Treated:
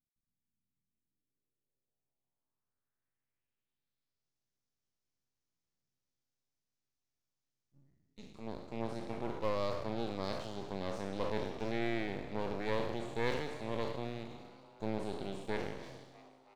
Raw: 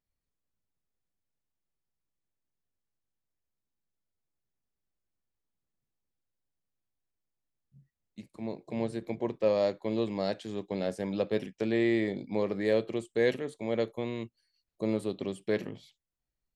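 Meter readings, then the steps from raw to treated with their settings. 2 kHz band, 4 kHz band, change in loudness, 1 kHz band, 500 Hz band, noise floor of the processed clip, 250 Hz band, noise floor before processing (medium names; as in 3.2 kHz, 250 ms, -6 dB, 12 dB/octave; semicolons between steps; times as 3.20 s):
-4.5 dB, -3.0 dB, -7.5 dB, +1.5 dB, -8.5 dB, under -85 dBFS, -8.5 dB, under -85 dBFS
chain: spectral sustain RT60 1.20 s; dynamic bell 5.2 kHz, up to -5 dB, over -51 dBFS, Q 0.93; low-pass sweep 220 Hz -> 5.9 kHz, 0.87–4.32 s; half-wave rectifier; frequency-shifting echo 323 ms, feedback 56%, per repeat +130 Hz, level -18.5 dB; trim -5.5 dB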